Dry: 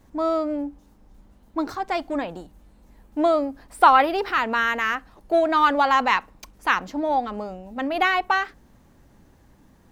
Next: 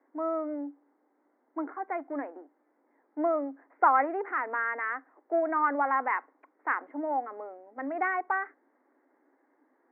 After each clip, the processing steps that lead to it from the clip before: Chebyshev band-pass 270–2100 Hz, order 5; gain -7.5 dB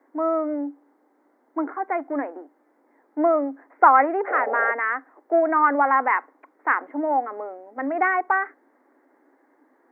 painted sound noise, 4.27–4.72, 400–840 Hz -36 dBFS; gain +8 dB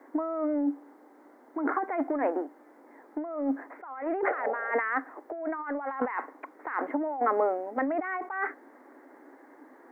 negative-ratio compressor -31 dBFS, ratio -1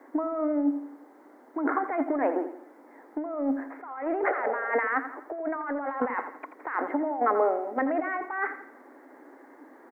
feedback echo 84 ms, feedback 44%, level -11 dB; gain +1.5 dB

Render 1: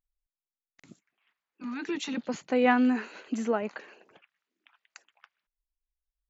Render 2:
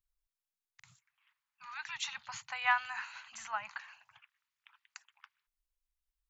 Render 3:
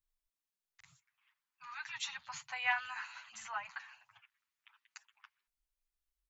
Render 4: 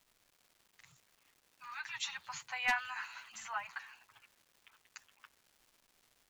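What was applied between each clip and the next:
elliptic band-stop 120–930 Hz, stop band 50 dB
endless flanger 8.2 ms -1.4 Hz; gain +1 dB
one-sided fold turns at -25 dBFS; crackle 580/s -57 dBFS; gain +1 dB

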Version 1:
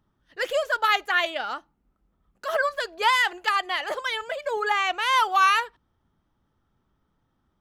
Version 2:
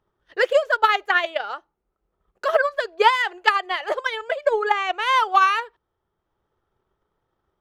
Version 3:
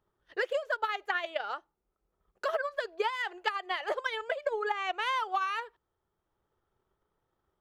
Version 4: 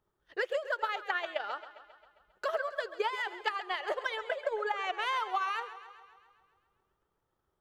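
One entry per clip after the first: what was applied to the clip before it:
LPF 3500 Hz 6 dB/oct; resonant low shelf 320 Hz -6 dB, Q 3; transient shaper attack +9 dB, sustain -3 dB
compressor 12:1, threshold -22 dBFS, peak gain reduction 13.5 dB; gain -5 dB
warbling echo 0.134 s, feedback 61%, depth 57 cents, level -14 dB; gain -1.5 dB

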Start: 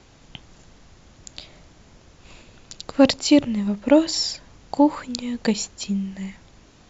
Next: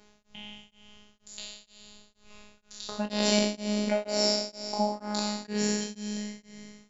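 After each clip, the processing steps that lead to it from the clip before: spectral trails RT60 2.36 s; robotiser 209 Hz; beating tremolo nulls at 2.1 Hz; gain -6.5 dB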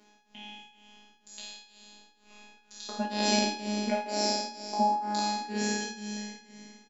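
resonant low shelf 170 Hz -12.5 dB, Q 3; resonator 76 Hz, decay 0.37 s, harmonics all, mix 90%; echo 0.165 s -21 dB; gain +7 dB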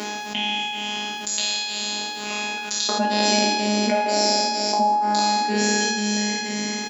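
HPF 230 Hz 6 dB/oct; fast leveller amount 70%; gain +5.5 dB

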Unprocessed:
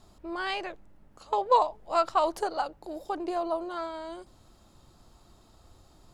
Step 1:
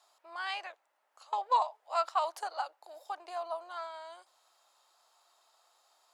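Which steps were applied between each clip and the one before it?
HPF 690 Hz 24 dB/oct; gain -4 dB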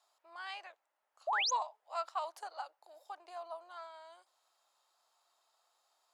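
painted sound rise, 1.27–1.51, 570–7100 Hz -25 dBFS; gain -7.5 dB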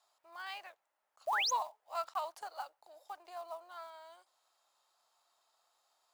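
block floating point 5-bit

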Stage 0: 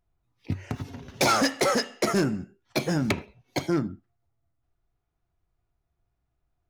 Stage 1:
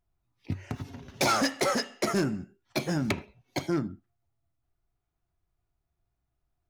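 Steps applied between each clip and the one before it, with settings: notch 480 Hz, Q 12; gain -3 dB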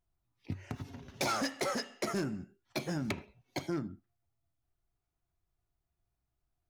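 compressor 1.5:1, threshold -32 dBFS, peak gain reduction 4 dB; gain -4 dB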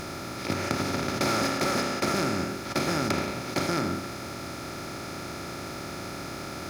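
per-bin compression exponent 0.2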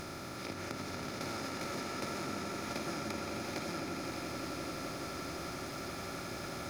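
compressor, threshold -31 dBFS, peak gain reduction 9 dB; on a send: swelling echo 86 ms, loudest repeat 8, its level -12 dB; on the sum: gain -7 dB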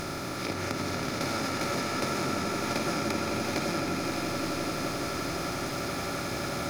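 reverb RT60 0.85 s, pre-delay 7 ms, DRR 11 dB; gain +8.5 dB

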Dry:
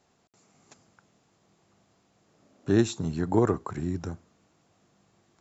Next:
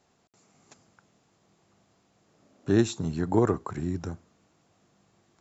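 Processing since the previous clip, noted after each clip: nothing audible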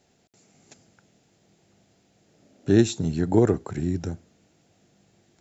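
bell 1100 Hz -12.5 dB 0.6 oct; gain +4.5 dB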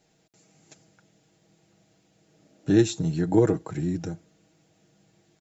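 comb 6.3 ms, depth 60%; gain -2.5 dB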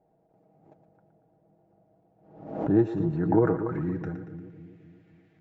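low-pass sweep 740 Hz -> 2100 Hz, 2.02–4.66; split-band echo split 410 Hz, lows 0.261 s, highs 0.116 s, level -9.5 dB; backwards sustainer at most 79 dB/s; gain -3.5 dB

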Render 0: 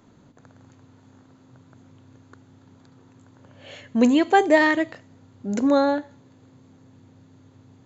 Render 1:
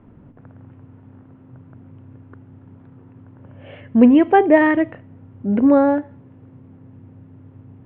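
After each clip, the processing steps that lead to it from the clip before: steep low-pass 3000 Hz 48 dB/oct; tilt -2.5 dB/oct; gain +2 dB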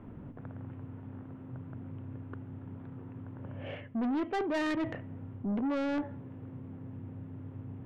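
reverse; compressor 5:1, threshold -23 dBFS, peak gain reduction 15 dB; reverse; soft clip -28.5 dBFS, distortion -8 dB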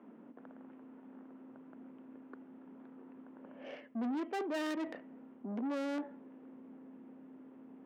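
tracing distortion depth 0.14 ms; elliptic high-pass 220 Hz, stop band 80 dB; high shelf 5200 Hz -4.5 dB; gain -4.5 dB

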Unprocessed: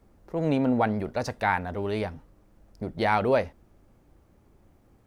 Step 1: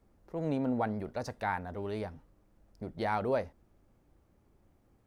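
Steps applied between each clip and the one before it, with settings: dynamic EQ 2700 Hz, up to -6 dB, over -44 dBFS, Q 1.3; gain -7.5 dB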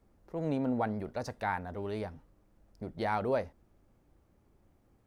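nothing audible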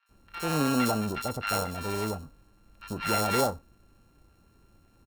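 sample sorter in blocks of 32 samples; three bands offset in time mids, highs, lows 60/90 ms, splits 1200/3700 Hz; gain +6 dB

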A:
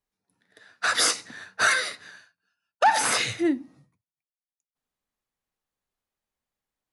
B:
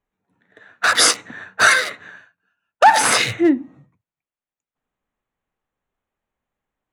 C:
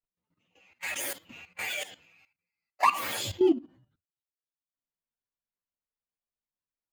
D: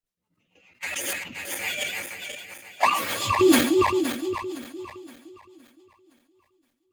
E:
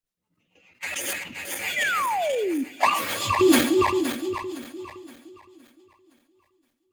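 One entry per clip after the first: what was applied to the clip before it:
Wiener smoothing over 9 samples; gain +8.5 dB
inharmonic rescaling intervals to 122%; dynamic EQ 430 Hz, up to +6 dB, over -32 dBFS, Q 0.92; level quantiser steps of 14 dB; gain -5.5 dB
regenerating reverse delay 0.258 s, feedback 60%, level -3 dB; rotary speaker horn 7 Hz; sustainer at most 69 dB/s; gain +6 dB
painted sound fall, 1.76–2.64, 250–2100 Hz -25 dBFS; on a send at -17.5 dB: reverb RT60 0.75 s, pre-delay 17 ms

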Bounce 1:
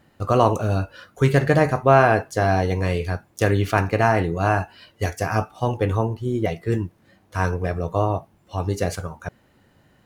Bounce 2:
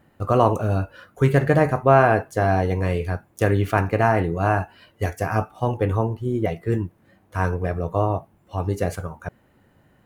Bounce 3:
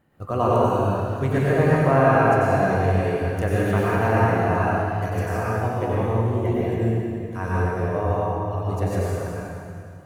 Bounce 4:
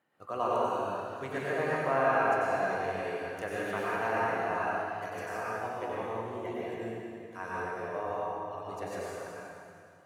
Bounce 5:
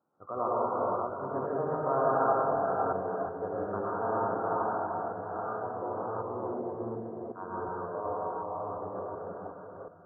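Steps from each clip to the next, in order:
bell 4900 Hz -8.5 dB 1.5 oct
reverb RT60 2.4 s, pre-delay 87 ms, DRR -7 dB; gain -7.5 dB
weighting filter A; gain -7.5 dB
reverse delay 0.366 s, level -3 dB; Chebyshev low-pass 1400 Hz, order 6

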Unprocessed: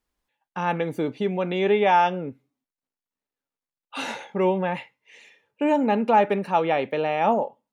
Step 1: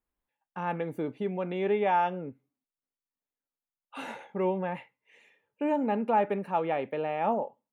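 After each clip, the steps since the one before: bell 5100 Hz -12.5 dB 1.3 oct; gain -6.5 dB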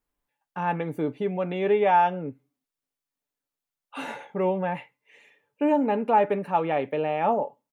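comb 6.9 ms, depth 33%; gain +4 dB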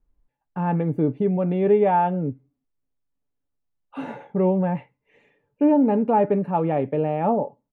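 tilt -4.5 dB/oct; gain -1.5 dB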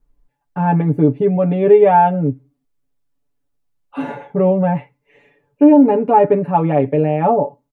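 comb 7 ms, depth 76%; gain +4.5 dB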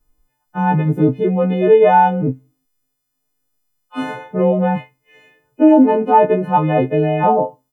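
frequency quantiser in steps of 3 st

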